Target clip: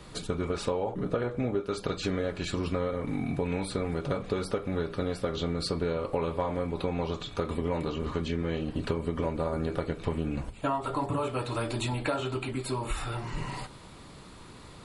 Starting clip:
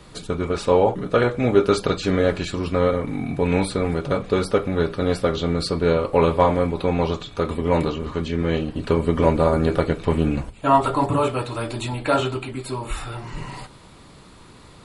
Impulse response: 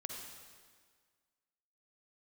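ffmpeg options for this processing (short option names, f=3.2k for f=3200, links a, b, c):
-filter_complex "[0:a]asettb=1/sr,asplit=3[a][b][c];[a]atrim=end=0.934[d];[b]atrim=start=0.93:end=1.61,asetpts=PTS-STARTPTS,afade=t=in:d=0.004:c=qsin,afade=t=out:st=0.676:d=0.004:c=qsin,tiltshelf=f=1.4k:g=3.5[e];[c]atrim=start=1.606[f];[d][e]acrossfade=d=0.004:c1=hsin:c2=qsin[g];[g][f]acrossfade=d=0.004:c1=qsin:c2=hsin,acompressor=threshold=-24dB:ratio=12,volume=-2dB"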